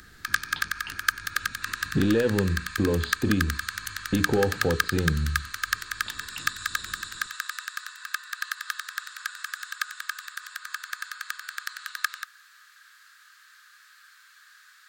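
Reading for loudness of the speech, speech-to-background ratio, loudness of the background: -27.0 LUFS, 4.5 dB, -31.5 LUFS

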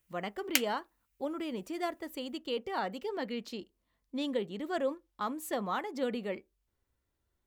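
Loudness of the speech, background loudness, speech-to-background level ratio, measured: -37.0 LUFS, -32.0 LUFS, -5.0 dB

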